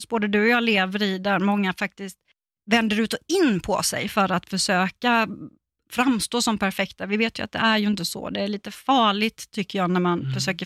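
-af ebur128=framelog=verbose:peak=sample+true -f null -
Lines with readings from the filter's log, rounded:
Integrated loudness:
  I:         -22.6 LUFS
  Threshold: -32.9 LUFS
Loudness range:
  LRA:         1.4 LU
  Threshold: -43.1 LUFS
  LRA low:   -23.7 LUFS
  LRA high:  -22.3 LUFS
Sample peak:
  Peak:       -8.3 dBFS
True peak:
  Peak:       -8.3 dBFS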